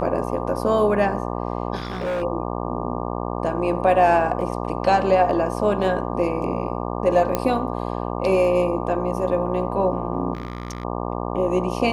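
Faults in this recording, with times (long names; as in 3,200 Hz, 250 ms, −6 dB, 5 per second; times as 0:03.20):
mains buzz 60 Hz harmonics 20 −27 dBFS
0:01.75–0:02.23: clipping −22 dBFS
0:04.41: drop-out 2.1 ms
0:07.35: click −7 dBFS
0:10.33–0:10.85: clipping −24.5 dBFS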